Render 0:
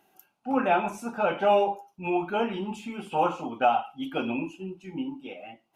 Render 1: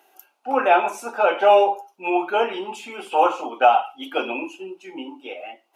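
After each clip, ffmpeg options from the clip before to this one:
-af "highpass=f=360:w=0.5412,highpass=f=360:w=1.3066,volume=2.37"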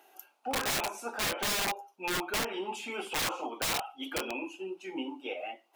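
-af "aeval=exprs='(mod(5.96*val(0)+1,2)-1)/5.96':c=same,alimiter=limit=0.0668:level=0:latency=1:release=455,volume=0.794"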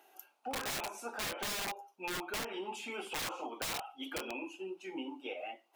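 -af "acompressor=threshold=0.02:ratio=2.5,volume=0.708"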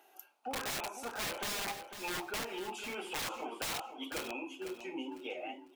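-af "aecho=1:1:500|1000|1500:0.316|0.0759|0.0182"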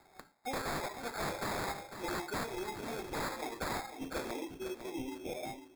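-af "acrusher=samples=15:mix=1:aa=0.000001,volume=1.12"

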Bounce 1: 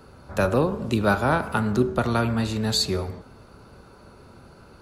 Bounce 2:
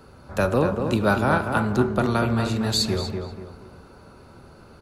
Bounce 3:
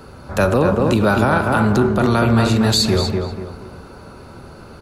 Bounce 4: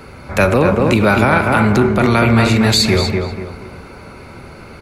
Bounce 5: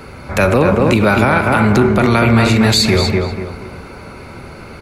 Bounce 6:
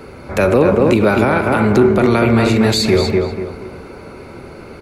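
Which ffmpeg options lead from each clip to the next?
-filter_complex "[0:a]asplit=2[s0][s1];[s1]adelay=241,lowpass=f=2300:p=1,volume=0.531,asplit=2[s2][s3];[s3]adelay=241,lowpass=f=2300:p=1,volume=0.37,asplit=2[s4][s5];[s5]adelay=241,lowpass=f=2300:p=1,volume=0.37,asplit=2[s6][s7];[s7]adelay=241,lowpass=f=2300:p=1,volume=0.37[s8];[s0][s2][s4][s6][s8]amix=inputs=5:normalize=0"
-af "alimiter=level_in=5.01:limit=0.891:release=50:level=0:latency=1,volume=0.562"
-af "equalizer=f=2200:t=o:w=0.35:g=14.5,volume=1.33"
-af "alimiter=limit=0.562:level=0:latency=1:release=111,volume=1.33"
-af "equalizer=f=390:t=o:w=1.4:g=7.5,volume=0.596"

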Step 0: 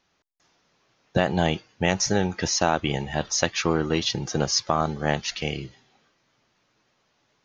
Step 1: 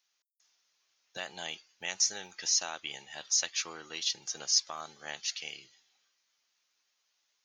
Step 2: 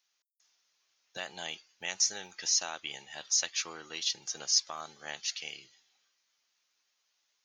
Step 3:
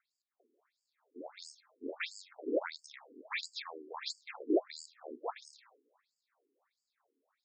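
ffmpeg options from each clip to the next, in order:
-af "aderivative"
-af anull
-af "acrusher=samples=15:mix=1:aa=0.000001,afftfilt=real='re*between(b*sr/1024,310*pow(6500/310,0.5+0.5*sin(2*PI*1.5*pts/sr))/1.41,310*pow(6500/310,0.5+0.5*sin(2*PI*1.5*pts/sr))*1.41)':imag='im*between(b*sr/1024,310*pow(6500/310,0.5+0.5*sin(2*PI*1.5*pts/sr))/1.41,310*pow(6500/310,0.5+0.5*sin(2*PI*1.5*pts/sr))*1.41)':win_size=1024:overlap=0.75,volume=1.5"

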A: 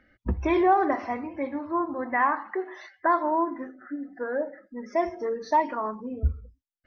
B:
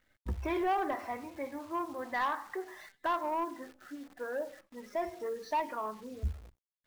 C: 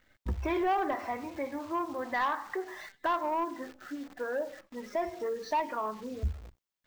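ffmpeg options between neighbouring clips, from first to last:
-af "equalizer=f=250:t=o:w=1:g=-5.5,asoftclip=type=tanh:threshold=0.112,acrusher=bits=9:dc=4:mix=0:aa=0.000001,volume=0.501"
-filter_complex "[0:a]equalizer=f=11000:t=o:w=0.57:g=-7.5,asplit=2[s0][s1];[s1]acompressor=threshold=0.00891:ratio=6,volume=1[s2];[s0][s2]amix=inputs=2:normalize=0"

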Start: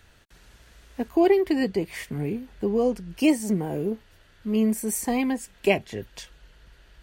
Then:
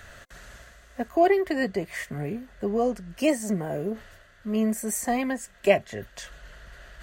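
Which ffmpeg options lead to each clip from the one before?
-af "superequalizer=6b=0.708:8b=2.51:10b=2:11b=2.24:15b=1.58,areverse,acompressor=mode=upward:threshold=0.02:ratio=2.5,areverse,volume=0.75"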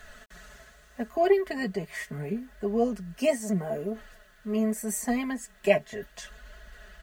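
-af "flanger=delay=2.7:depth=5.2:regen=48:speed=0.76:shape=triangular,aecho=1:1:4.7:0.64,acrusher=bits=10:mix=0:aa=0.000001"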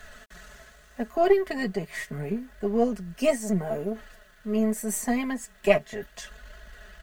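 -af "aeval=exprs='if(lt(val(0),0),0.708*val(0),val(0))':c=same,volume=1.41"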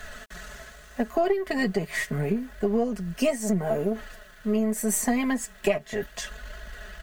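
-af "acompressor=threshold=0.0501:ratio=8,volume=2"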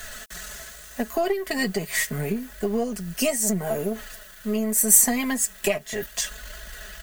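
-af "crystalizer=i=3.5:c=0,volume=0.891"

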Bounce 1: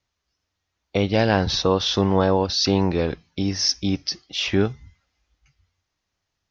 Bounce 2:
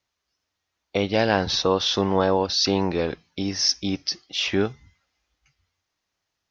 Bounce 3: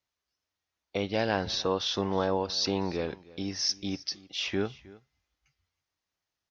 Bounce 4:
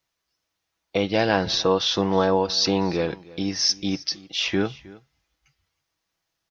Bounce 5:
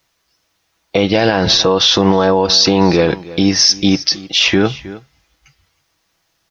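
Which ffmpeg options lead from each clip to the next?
-af "lowshelf=f=160:g=-10"
-af "aecho=1:1:314:0.0891,volume=0.422"
-af "aecho=1:1:6.1:0.34,volume=2.24"
-af "alimiter=level_in=5.96:limit=0.891:release=50:level=0:latency=1,volume=0.891"

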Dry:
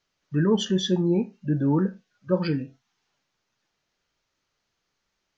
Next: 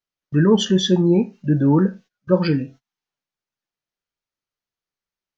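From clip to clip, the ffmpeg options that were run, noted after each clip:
-af "agate=range=0.0891:threshold=0.00447:ratio=16:detection=peak,volume=2.11"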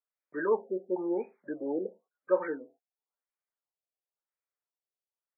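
-af "highpass=f=420:w=0.5412,highpass=f=420:w=1.3066,afftfilt=real='re*lt(b*sr/1024,770*pow(2600/770,0.5+0.5*sin(2*PI*0.96*pts/sr)))':imag='im*lt(b*sr/1024,770*pow(2600/770,0.5+0.5*sin(2*PI*0.96*pts/sr)))':win_size=1024:overlap=0.75,volume=0.501"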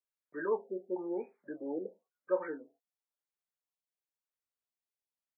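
-filter_complex "[0:a]asplit=2[s0][s1];[s1]adelay=25,volume=0.237[s2];[s0][s2]amix=inputs=2:normalize=0,volume=0.531"

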